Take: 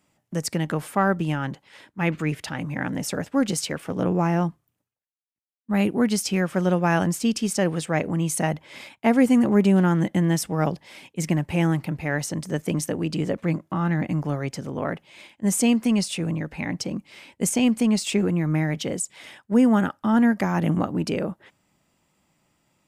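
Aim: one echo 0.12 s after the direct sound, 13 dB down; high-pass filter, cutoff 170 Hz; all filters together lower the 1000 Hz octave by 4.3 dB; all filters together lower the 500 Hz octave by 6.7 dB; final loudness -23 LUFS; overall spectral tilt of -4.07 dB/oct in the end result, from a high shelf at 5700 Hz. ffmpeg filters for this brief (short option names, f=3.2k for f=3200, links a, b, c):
-af "highpass=170,equalizer=f=500:t=o:g=-8,equalizer=f=1k:t=o:g=-3,highshelf=f=5.7k:g=7,aecho=1:1:120:0.224,volume=2.5dB"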